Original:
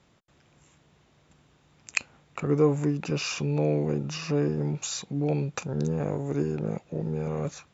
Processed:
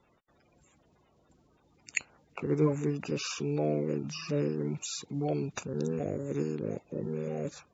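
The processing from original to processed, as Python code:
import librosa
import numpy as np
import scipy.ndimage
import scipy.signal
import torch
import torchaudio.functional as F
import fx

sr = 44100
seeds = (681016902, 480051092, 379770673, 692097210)

y = fx.spec_quant(x, sr, step_db=30)
y = y * 10.0 ** (-4.0 / 20.0)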